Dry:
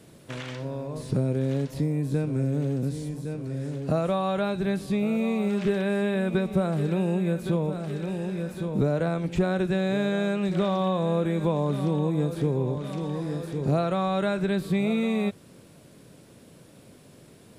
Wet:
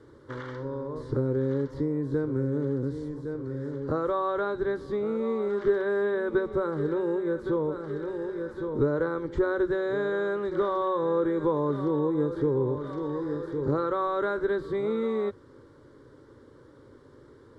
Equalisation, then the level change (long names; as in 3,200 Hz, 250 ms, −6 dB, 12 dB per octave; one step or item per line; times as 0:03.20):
low-pass filter 2,600 Hz 12 dB per octave
phaser with its sweep stopped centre 690 Hz, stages 6
+3.5 dB